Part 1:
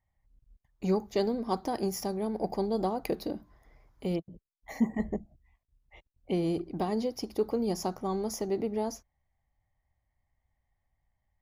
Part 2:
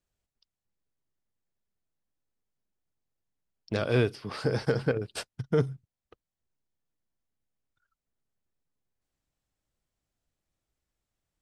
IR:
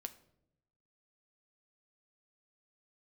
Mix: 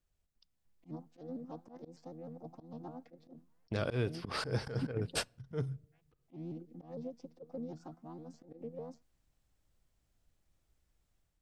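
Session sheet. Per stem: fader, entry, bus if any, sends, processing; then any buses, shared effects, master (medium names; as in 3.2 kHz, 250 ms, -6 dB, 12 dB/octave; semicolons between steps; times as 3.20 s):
-19.5 dB, 0.00 s, no send, vocoder on a held chord bare fifth, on E3; vibrato with a chosen wave saw up 6.6 Hz, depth 160 cents
-3.5 dB, 0.00 s, send -14.5 dB, bass shelf 100 Hz +9.5 dB; compression 5:1, threshold -32 dBFS, peak gain reduction 13.5 dB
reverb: on, RT60 0.80 s, pre-delay 6 ms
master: slow attack 108 ms; level rider gain up to 6 dB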